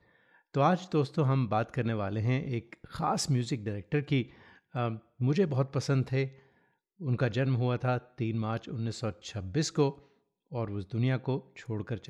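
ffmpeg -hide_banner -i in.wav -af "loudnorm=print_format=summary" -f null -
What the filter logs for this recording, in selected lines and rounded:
Input Integrated:    -31.7 LUFS
Input True Peak:     -13.5 dBTP
Input LRA:             2.8 LU
Input Threshold:     -42.1 LUFS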